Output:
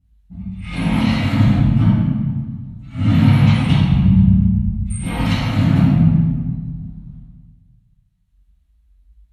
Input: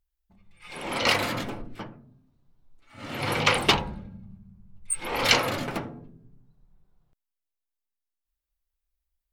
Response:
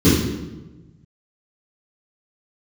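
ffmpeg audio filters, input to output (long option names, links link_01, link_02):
-filter_complex "[0:a]acompressor=threshold=-35dB:ratio=12[link_01];[1:a]atrim=start_sample=2205,asetrate=26901,aresample=44100[link_02];[link_01][link_02]afir=irnorm=-1:irlink=0,volume=-10dB"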